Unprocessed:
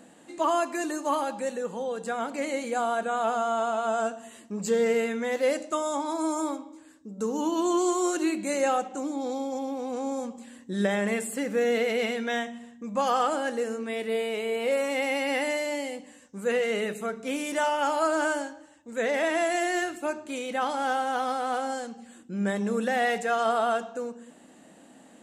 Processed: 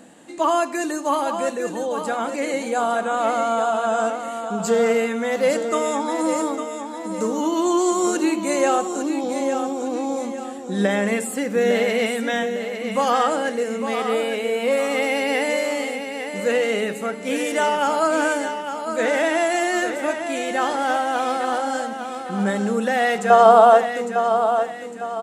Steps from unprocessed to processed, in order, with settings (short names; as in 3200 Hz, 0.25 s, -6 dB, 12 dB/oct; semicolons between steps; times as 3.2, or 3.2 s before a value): 23.3–23.86 band shelf 700 Hz +9.5 dB; feedback echo 0.855 s, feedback 39%, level -8 dB; gain +5.5 dB